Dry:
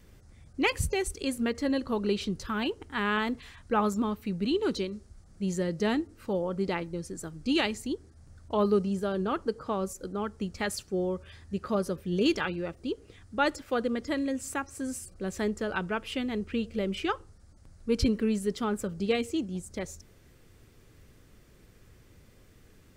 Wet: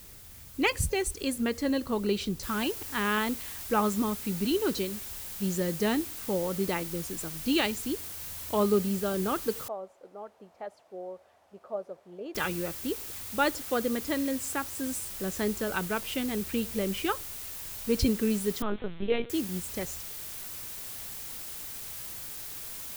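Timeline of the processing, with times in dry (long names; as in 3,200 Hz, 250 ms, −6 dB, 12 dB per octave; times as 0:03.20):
0:02.43: noise floor change −55 dB −45 dB
0:09.68–0:12.35: resonant band-pass 670 Hz, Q 3.9
0:18.62–0:19.30: linear-prediction vocoder at 8 kHz pitch kept
whole clip: high-shelf EQ 8,700 Hz +7 dB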